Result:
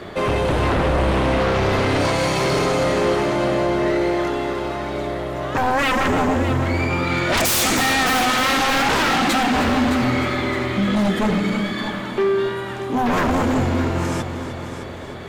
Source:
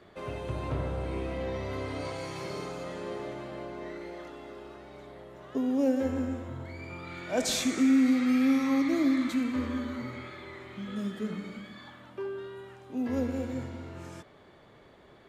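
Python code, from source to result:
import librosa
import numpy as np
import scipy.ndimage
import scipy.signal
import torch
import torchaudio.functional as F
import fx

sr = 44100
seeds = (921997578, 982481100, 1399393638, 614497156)

y = fx.fold_sine(x, sr, drive_db=17, ceiling_db=-15.5)
y = fx.echo_heads(y, sr, ms=307, heads='first and second', feedback_pct=48, wet_db=-13.0)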